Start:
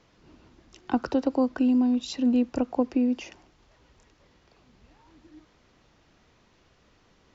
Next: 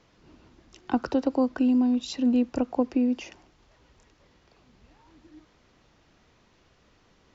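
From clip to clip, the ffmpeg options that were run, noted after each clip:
-af anull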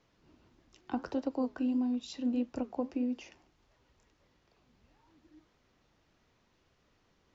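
-af "flanger=delay=7.1:depth=6.5:regen=-69:speed=1.6:shape=sinusoidal,volume=-5dB"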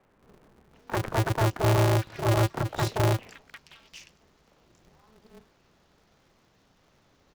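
-filter_complex "[0:a]aeval=exprs='0.1*(cos(1*acos(clip(val(0)/0.1,-1,1)))-cos(1*PI/2))+0.0501*(cos(3*acos(clip(val(0)/0.1,-1,1)))-cos(3*PI/2))+0.0141*(cos(5*acos(clip(val(0)/0.1,-1,1)))-cos(5*PI/2))+0.0398*(cos(6*acos(clip(val(0)/0.1,-1,1)))-cos(6*PI/2))+0.0251*(cos(7*acos(clip(val(0)/0.1,-1,1)))-cos(7*PI/2))':c=same,acrossover=split=160|2200[a][b][c];[a]adelay=30[d];[c]adelay=750[e];[d][b][e]amix=inputs=3:normalize=0,aeval=exprs='val(0)*sgn(sin(2*PI*110*n/s))':c=same,volume=4dB"

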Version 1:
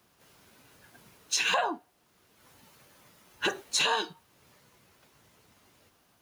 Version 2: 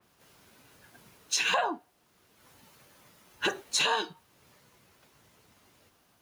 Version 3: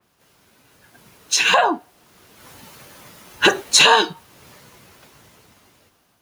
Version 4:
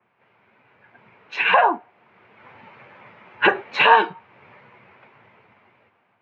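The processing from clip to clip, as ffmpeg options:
-af "adynamicequalizer=threshold=0.01:dfrequency=3500:dqfactor=0.7:tfrequency=3500:tqfactor=0.7:attack=5:release=100:ratio=0.375:range=2.5:mode=cutabove:tftype=highshelf"
-af "dynaudnorm=f=310:g=9:m=14dB,volume=2dB"
-af "highpass=f=110:w=0.5412,highpass=f=110:w=1.3066,equalizer=f=160:t=q:w=4:g=-7,equalizer=f=290:t=q:w=4:g=-8,equalizer=f=890:t=q:w=4:g=4,equalizer=f=2.3k:t=q:w=4:g=7,lowpass=f=2.4k:w=0.5412,lowpass=f=2.4k:w=1.3066,volume=-1dB"

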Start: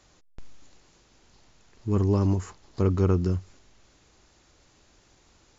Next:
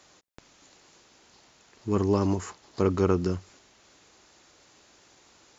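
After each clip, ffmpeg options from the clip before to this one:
-af "highpass=f=330:p=1,volume=4.5dB"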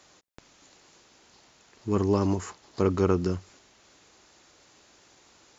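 -af anull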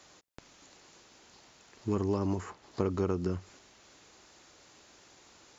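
-filter_complex "[0:a]acrossover=split=1100|2900[a][b][c];[a]acompressor=threshold=-27dB:ratio=4[d];[b]acompressor=threshold=-48dB:ratio=4[e];[c]acompressor=threshold=-56dB:ratio=4[f];[d][e][f]amix=inputs=3:normalize=0"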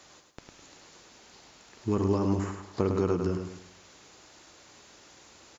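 -af "aecho=1:1:104|208|312|416|520:0.501|0.195|0.0762|0.0297|0.0116,volume=3dB"

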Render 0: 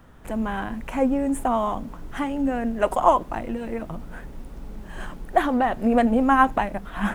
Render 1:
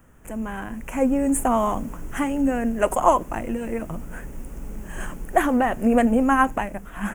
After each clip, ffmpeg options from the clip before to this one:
-af "firequalizer=gain_entry='entry(520,0);entry(740,-3);entry(1600,0);entry(2700,1);entry(3900,-12);entry(6600,8)':delay=0.05:min_phase=1,dynaudnorm=f=320:g=7:m=11.5dB,volume=-3.5dB"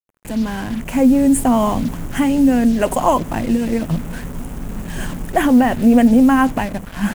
-filter_complex "[0:a]equalizer=f=100:t=o:w=0.33:g=10,equalizer=f=160:t=o:w=0.33:g=10,equalizer=f=250:t=o:w=0.33:g=8,equalizer=f=1.25k:t=o:w=0.33:g=-6,equalizer=f=3.15k:t=o:w=0.33:g=6,asplit=2[a][b];[b]alimiter=limit=-13.5dB:level=0:latency=1,volume=2dB[c];[a][c]amix=inputs=2:normalize=0,acrusher=bits=4:mix=0:aa=0.5,volume=-2dB"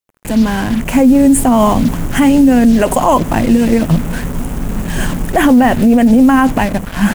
-af "alimiter=level_in=9.5dB:limit=-1dB:release=50:level=0:latency=1,volume=-1dB"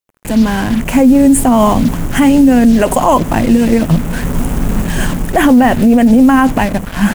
-af "dynaudnorm=f=160:g=3:m=6dB"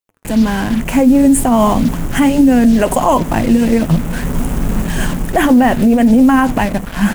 -af "flanger=delay=4.2:depth=2.1:regen=-84:speed=1.6:shape=triangular,volume=2.5dB"

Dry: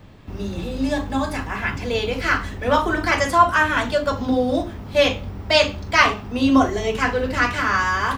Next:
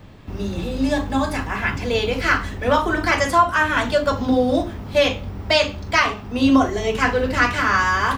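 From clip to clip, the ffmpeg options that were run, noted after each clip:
-af "alimiter=limit=-7.5dB:level=0:latency=1:release=497,volume=2dB"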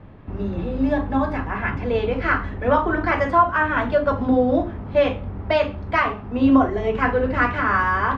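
-af "lowpass=1.7k"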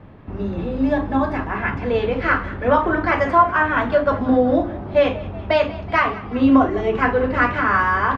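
-filter_complex "[0:a]lowshelf=f=88:g=-5,asplit=6[a][b][c][d][e][f];[b]adelay=187,afreqshift=39,volume=-18.5dB[g];[c]adelay=374,afreqshift=78,volume=-22.9dB[h];[d]adelay=561,afreqshift=117,volume=-27.4dB[i];[e]adelay=748,afreqshift=156,volume=-31.8dB[j];[f]adelay=935,afreqshift=195,volume=-36.2dB[k];[a][g][h][i][j][k]amix=inputs=6:normalize=0,volume=2dB"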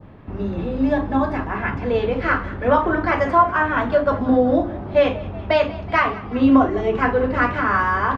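-af "adynamicequalizer=threshold=0.0224:dfrequency=2200:dqfactor=0.87:tfrequency=2200:tqfactor=0.87:attack=5:release=100:ratio=0.375:range=1.5:mode=cutabove:tftype=bell"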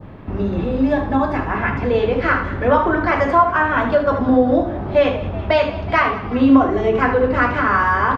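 -filter_complex "[0:a]asplit=2[a][b];[b]acompressor=threshold=-25dB:ratio=6,volume=1.5dB[c];[a][c]amix=inputs=2:normalize=0,aecho=1:1:77:0.335,volume=-1dB"

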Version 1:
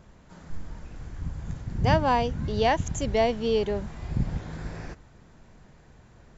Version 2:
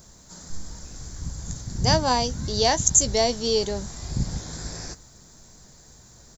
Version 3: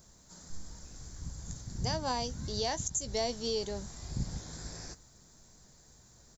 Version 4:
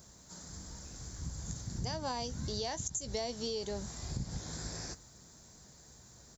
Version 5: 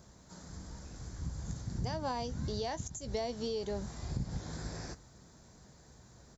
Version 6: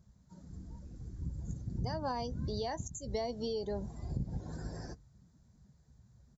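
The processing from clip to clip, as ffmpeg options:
-filter_complex "[0:a]aexciter=amount=12.1:drive=3:freq=4.1k,asplit=2[a][b];[b]adelay=16,volume=-13dB[c];[a][c]amix=inputs=2:normalize=0"
-af "alimiter=limit=-13dB:level=0:latency=1:release=204,volume=-9dB"
-af "highpass=49,acompressor=threshold=-37dB:ratio=5,volume=3dB"
-af "lowpass=f=2.3k:p=1,volume=2dB"
-af "afftdn=nr=17:nf=-47"

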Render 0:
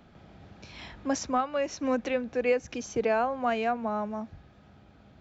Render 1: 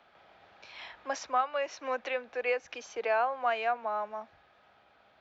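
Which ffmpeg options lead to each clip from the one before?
-filter_complex "[0:a]acrossover=split=530 4800:gain=0.0631 1 0.141[a][b][c];[a][b][c]amix=inputs=3:normalize=0,acrossover=split=230|3700[d][e][f];[d]alimiter=level_in=33.5dB:limit=-24dB:level=0:latency=1,volume=-33.5dB[g];[g][e][f]amix=inputs=3:normalize=0,volume=1dB"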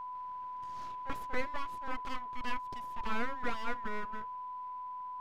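-af "aeval=exprs='abs(val(0))':c=same,highshelf=f=2.5k:g=-11,aeval=exprs='val(0)+0.0126*sin(2*PI*1000*n/s)':c=same,volume=-1.5dB"

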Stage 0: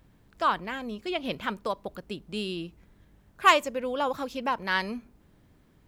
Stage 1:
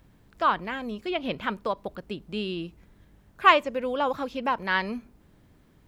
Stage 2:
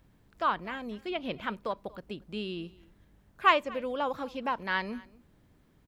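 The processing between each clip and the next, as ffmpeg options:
-filter_complex "[0:a]acrossover=split=4100[a][b];[b]acompressor=threshold=-60dB:ratio=4:attack=1:release=60[c];[a][c]amix=inputs=2:normalize=0,volume=2dB"
-af "aecho=1:1:236:0.075,volume=-5dB"

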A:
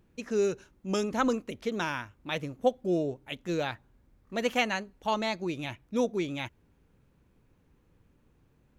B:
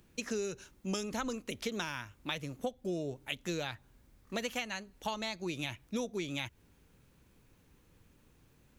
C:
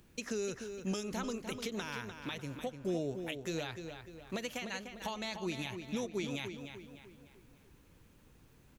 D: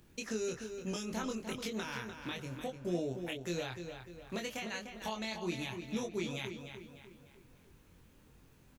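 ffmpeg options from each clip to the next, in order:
-filter_complex "[0:a]highshelf=f=2.4k:g=11.5,acrossover=split=120[a][b];[b]acompressor=threshold=-33dB:ratio=12[c];[a][c]amix=inputs=2:normalize=0"
-filter_complex "[0:a]alimiter=level_in=4dB:limit=-24dB:level=0:latency=1:release=251,volume=-4dB,asplit=2[a][b];[b]adelay=299,lowpass=f=4.3k:p=1,volume=-7.5dB,asplit=2[c][d];[d]adelay=299,lowpass=f=4.3k:p=1,volume=0.46,asplit=2[e][f];[f]adelay=299,lowpass=f=4.3k:p=1,volume=0.46,asplit=2[g][h];[h]adelay=299,lowpass=f=4.3k:p=1,volume=0.46,asplit=2[i][j];[j]adelay=299,lowpass=f=4.3k:p=1,volume=0.46[k];[c][e][g][i][k]amix=inputs=5:normalize=0[l];[a][l]amix=inputs=2:normalize=0,volume=1.5dB"
-filter_complex "[0:a]asplit=2[a][b];[b]adelay=23,volume=-3.5dB[c];[a][c]amix=inputs=2:normalize=0,volume=-1.5dB"

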